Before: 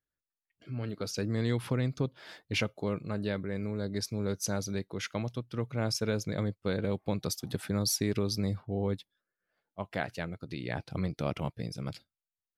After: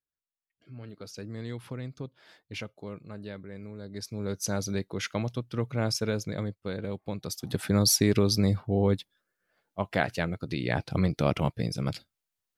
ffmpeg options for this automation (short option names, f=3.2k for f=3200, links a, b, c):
-af "volume=13.5dB,afade=t=in:st=3.86:d=0.82:silence=0.281838,afade=t=out:st=5.73:d=0.94:silence=0.473151,afade=t=in:st=7.27:d=0.49:silence=0.316228"